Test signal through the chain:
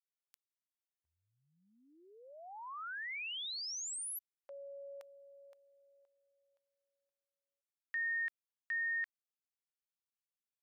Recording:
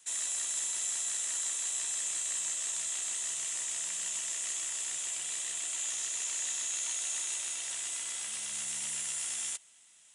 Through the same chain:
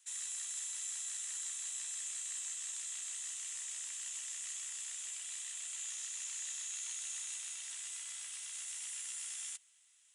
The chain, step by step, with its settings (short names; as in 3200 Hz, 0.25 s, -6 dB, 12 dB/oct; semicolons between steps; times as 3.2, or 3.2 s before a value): HPF 1200 Hz 12 dB/oct; gain -7.5 dB